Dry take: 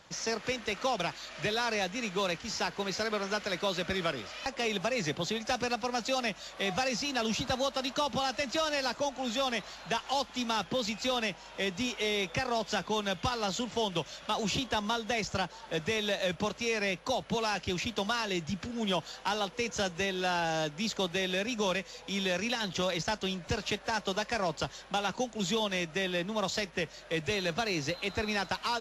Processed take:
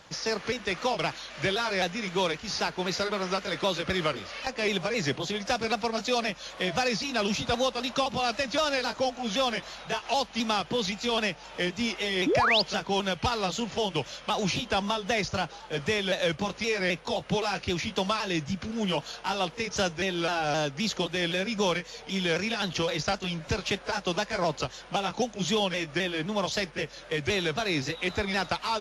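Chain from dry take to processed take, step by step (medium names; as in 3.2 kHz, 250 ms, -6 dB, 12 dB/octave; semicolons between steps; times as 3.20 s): sawtooth pitch modulation -2 st, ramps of 260 ms; painted sound rise, 12.26–12.62 s, 250–5300 Hz -28 dBFS; trim +4.5 dB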